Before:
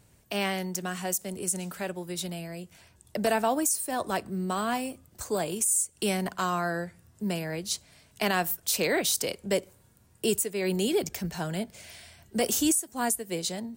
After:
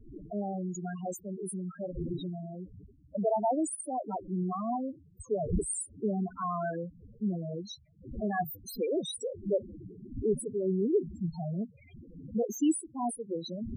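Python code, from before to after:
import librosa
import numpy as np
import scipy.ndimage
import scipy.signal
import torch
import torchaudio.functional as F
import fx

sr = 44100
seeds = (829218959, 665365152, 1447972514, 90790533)

y = fx.dmg_wind(x, sr, seeds[0], corner_hz=430.0, level_db=-39.0)
y = fx.vibrato(y, sr, rate_hz=0.86, depth_cents=30.0)
y = fx.spec_topn(y, sr, count=4)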